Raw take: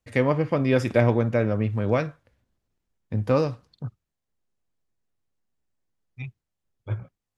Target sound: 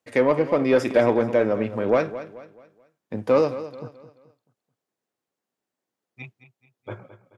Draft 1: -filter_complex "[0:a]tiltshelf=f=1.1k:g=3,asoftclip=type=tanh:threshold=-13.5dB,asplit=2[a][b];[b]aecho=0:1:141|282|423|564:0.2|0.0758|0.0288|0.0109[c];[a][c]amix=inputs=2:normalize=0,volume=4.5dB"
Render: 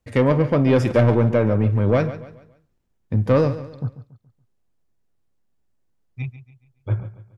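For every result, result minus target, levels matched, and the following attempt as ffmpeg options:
echo 75 ms early; 250 Hz band +2.5 dB
-filter_complex "[0:a]tiltshelf=f=1.1k:g=3,asoftclip=type=tanh:threshold=-13.5dB,asplit=2[a][b];[b]aecho=0:1:216|432|648|864:0.2|0.0758|0.0288|0.0109[c];[a][c]amix=inputs=2:normalize=0,volume=4.5dB"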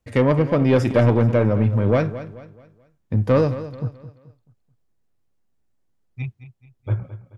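250 Hz band +2.5 dB
-filter_complex "[0:a]highpass=320,tiltshelf=f=1.1k:g=3,asoftclip=type=tanh:threshold=-13.5dB,asplit=2[a][b];[b]aecho=0:1:216|432|648|864:0.2|0.0758|0.0288|0.0109[c];[a][c]amix=inputs=2:normalize=0,volume=4.5dB"

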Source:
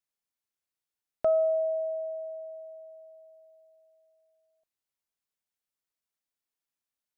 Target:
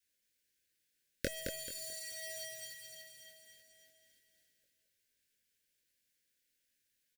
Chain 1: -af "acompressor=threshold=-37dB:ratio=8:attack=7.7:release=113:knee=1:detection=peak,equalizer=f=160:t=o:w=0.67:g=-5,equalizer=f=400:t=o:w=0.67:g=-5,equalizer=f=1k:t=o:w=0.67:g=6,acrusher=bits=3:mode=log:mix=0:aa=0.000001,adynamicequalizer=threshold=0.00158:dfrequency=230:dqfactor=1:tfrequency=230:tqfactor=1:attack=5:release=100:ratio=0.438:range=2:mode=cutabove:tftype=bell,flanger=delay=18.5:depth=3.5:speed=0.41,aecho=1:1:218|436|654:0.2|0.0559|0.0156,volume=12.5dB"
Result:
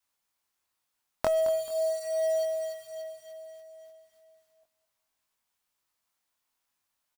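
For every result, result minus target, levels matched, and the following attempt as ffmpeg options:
1000 Hz band +13.0 dB; echo-to-direct -9 dB
-af "acompressor=threshold=-37dB:ratio=8:attack=7.7:release=113:knee=1:detection=peak,equalizer=f=160:t=o:w=0.67:g=-5,equalizer=f=400:t=o:w=0.67:g=-5,equalizer=f=1k:t=o:w=0.67:g=6,acrusher=bits=3:mode=log:mix=0:aa=0.000001,adynamicequalizer=threshold=0.00158:dfrequency=230:dqfactor=1:tfrequency=230:tqfactor=1:attack=5:release=100:ratio=0.438:range=2:mode=cutabove:tftype=bell,asuperstop=centerf=920:order=20:qfactor=1,flanger=delay=18.5:depth=3.5:speed=0.41,aecho=1:1:218|436|654:0.2|0.0559|0.0156,volume=12.5dB"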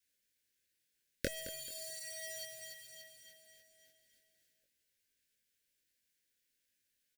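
echo-to-direct -9 dB
-af "acompressor=threshold=-37dB:ratio=8:attack=7.7:release=113:knee=1:detection=peak,equalizer=f=160:t=o:w=0.67:g=-5,equalizer=f=400:t=o:w=0.67:g=-5,equalizer=f=1k:t=o:w=0.67:g=6,acrusher=bits=3:mode=log:mix=0:aa=0.000001,adynamicequalizer=threshold=0.00158:dfrequency=230:dqfactor=1:tfrequency=230:tqfactor=1:attack=5:release=100:ratio=0.438:range=2:mode=cutabove:tftype=bell,asuperstop=centerf=920:order=20:qfactor=1,flanger=delay=18.5:depth=3.5:speed=0.41,aecho=1:1:218|436|654|872:0.562|0.157|0.0441|0.0123,volume=12.5dB"

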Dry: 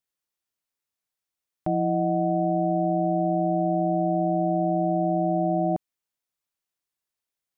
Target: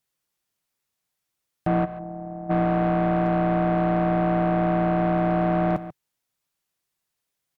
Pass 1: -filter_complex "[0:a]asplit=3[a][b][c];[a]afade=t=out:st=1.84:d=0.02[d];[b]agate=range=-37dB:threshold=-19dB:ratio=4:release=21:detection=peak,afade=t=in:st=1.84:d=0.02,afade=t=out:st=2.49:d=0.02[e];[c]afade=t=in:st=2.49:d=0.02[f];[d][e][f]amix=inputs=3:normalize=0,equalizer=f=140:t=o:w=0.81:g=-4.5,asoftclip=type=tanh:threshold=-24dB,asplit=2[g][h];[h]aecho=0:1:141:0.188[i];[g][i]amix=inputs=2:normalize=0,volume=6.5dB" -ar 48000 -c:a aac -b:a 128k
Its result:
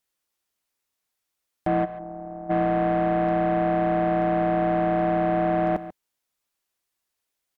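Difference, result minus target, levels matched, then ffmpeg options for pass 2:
125 Hz band -4.5 dB
-filter_complex "[0:a]asplit=3[a][b][c];[a]afade=t=out:st=1.84:d=0.02[d];[b]agate=range=-37dB:threshold=-19dB:ratio=4:release=21:detection=peak,afade=t=in:st=1.84:d=0.02,afade=t=out:st=2.49:d=0.02[e];[c]afade=t=in:st=2.49:d=0.02[f];[d][e][f]amix=inputs=3:normalize=0,equalizer=f=140:t=o:w=0.81:g=5.5,asoftclip=type=tanh:threshold=-24dB,asplit=2[g][h];[h]aecho=0:1:141:0.188[i];[g][i]amix=inputs=2:normalize=0,volume=6.5dB" -ar 48000 -c:a aac -b:a 128k

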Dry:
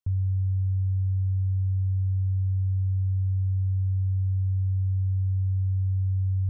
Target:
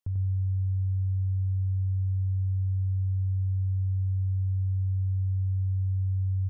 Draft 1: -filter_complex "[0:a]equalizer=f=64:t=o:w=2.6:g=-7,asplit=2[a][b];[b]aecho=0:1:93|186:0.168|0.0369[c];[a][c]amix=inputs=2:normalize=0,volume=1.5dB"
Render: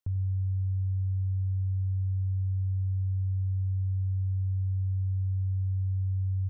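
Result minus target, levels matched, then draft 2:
echo-to-direct -10 dB
-filter_complex "[0:a]equalizer=f=64:t=o:w=2.6:g=-7,asplit=2[a][b];[b]aecho=0:1:93|186|279:0.531|0.117|0.0257[c];[a][c]amix=inputs=2:normalize=0,volume=1.5dB"

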